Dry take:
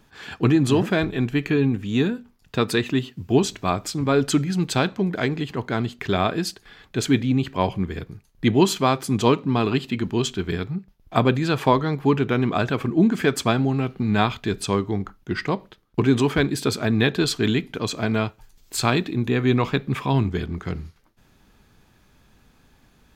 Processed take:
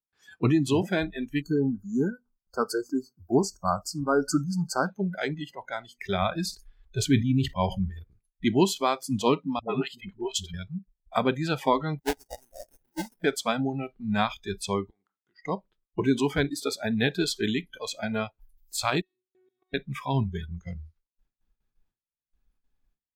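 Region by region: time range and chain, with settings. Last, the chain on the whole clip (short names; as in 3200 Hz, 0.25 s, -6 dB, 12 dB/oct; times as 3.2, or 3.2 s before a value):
1.41–4.86 brick-wall FIR band-stop 1600–4300 Hz + bell 1700 Hz +4 dB 2 oct
6.22–7.9 low shelf 98 Hz +10 dB + sustainer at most 140 dB/s
9.59–10.54 dispersion highs, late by 0.102 s, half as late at 370 Hz + three-band expander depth 100%
11.99–13.24 tone controls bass -12 dB, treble -2 dB + sample-rate reducer 1200 Hz, jitter 20% + upward expander 2.5:1, over -29 dBFS
14.9–15.45 weighting filter A + compressor 10:1, threshold -42 dBFS
19.01–19.74 low shelf 85 Hz -7 dB + resonator 370 Hz, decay 0.65 s, mix 100% + level quantiser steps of 18 dB
whole clip: gate with hold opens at -46 dBFS; spectral noise reduction 24 dB; gain -4.5 dB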